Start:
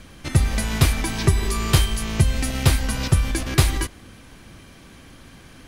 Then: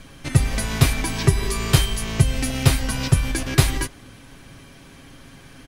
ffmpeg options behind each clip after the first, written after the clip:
-af "aecho=1:1:7.3:0.4"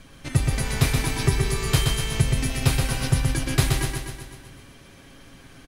-af "aecho=1:1:125|250|375|500|625|750|875|1000:0.631|0.372|0.22|0.13|0.0765|0.0451|0.0266|0.0157,volume=0.596"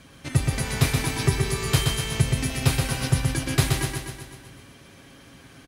-af "highpass=63"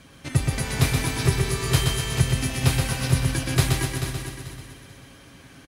-af "aecho=1:1:438|876|1314:0.355|0.0958|0.0259"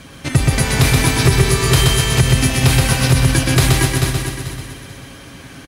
-af "alimiter=level_in=3.98:limit=0.891:release=50:level=0:latency=1,volume=0.891"

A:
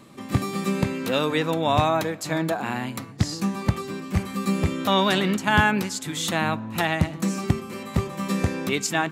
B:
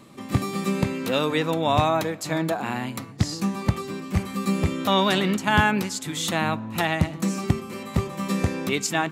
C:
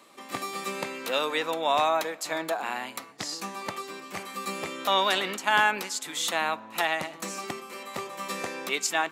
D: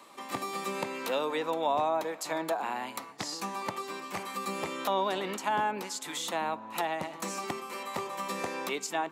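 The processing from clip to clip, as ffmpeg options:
-af "equalizer=f=1600:t=o:w=0.2:g=-2.5"
-af "highpass=540,volume=0.891"
-filter_complex "[0:a]equalizer=f=940:w=2.7:g=6.5,acrossover=split=630[s0][s1];[s1]acompressor=threshold=0.02:ratio=6[s2];[s0][s2]amix=inputs=2:normalize=0"

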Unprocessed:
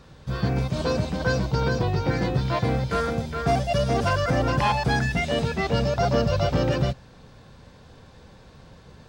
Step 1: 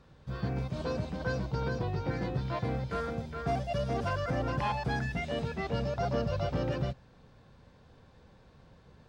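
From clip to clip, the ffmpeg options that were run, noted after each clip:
-af "highshelf=f=4300:g=-8,volume=0.355"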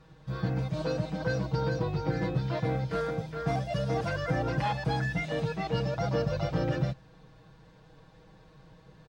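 -af "aecho=1:1:6.3:0.94"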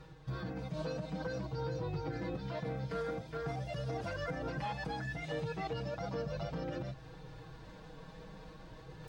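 -af "alimiter=level_in=1.58:limit=0.0631:level=0:latency=1:release=185,volume=0.631,areverse,acompressor=mode=upward:threshold=0.01:ratio=2.5,areverse,flanger=delay=2.2:depth=2.4:regen=-50:speed=0.55:shape=sinusoidal,volume=1.33"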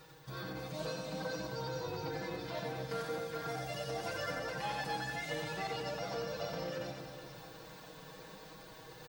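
-filter_complex "[0:a]aemphasis=mode=production:type=bsi,asplit=2[s0][s1];[s1]aecho=0:1:90|234|464.4|833|1423:0.631|0.398|0.251|0.158|0.1[s2];[s0][s2]amix=inputs=2:normalize=0"

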